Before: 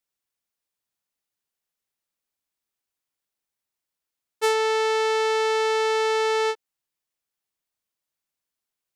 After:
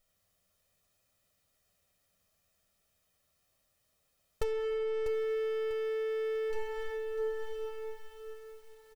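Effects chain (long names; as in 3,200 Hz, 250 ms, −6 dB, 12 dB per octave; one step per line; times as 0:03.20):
lower of the sound and its delayed copy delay 1.6 ms
0:04.43–0:06.53: Gaussian smoothing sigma 5.4 samples
gain into a clipping stage and back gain 25 dB
parametric band 600 Hz +6.5 dB 0.24 octaves
mains-hum notches 50/100/150 Hz
convolution reverb RT60 3.4 s, pre-delay 8 ms, DRR 1.5 dB
soft clipping −29.5 dBFS, distortion −14 dB
ambience of single reflections 11 ms −7.5 dB, 62 ms −13.5 dB
downward compressor 16 to 1, threshold −44 dBFS, peak gain reduction 15.5 dB
low-shelf EQ 330 Hz +11.5 dB
feedback echo at a low word length 646 ms, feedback 35%, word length 11 bits, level −8.5 dB
level +8 dB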